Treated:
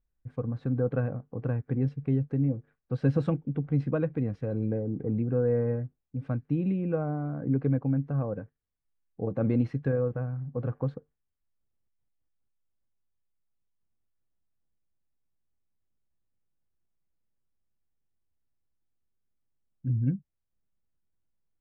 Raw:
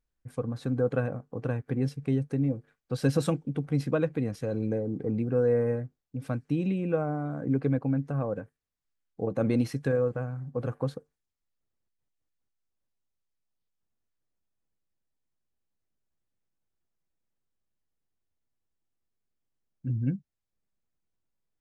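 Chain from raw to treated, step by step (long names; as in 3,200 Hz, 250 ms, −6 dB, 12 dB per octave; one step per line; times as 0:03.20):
low-pass filter 2,200 Hz 12 dB per octave
low-shelf EQ 200 Hz +8 dB
level −3.5 dB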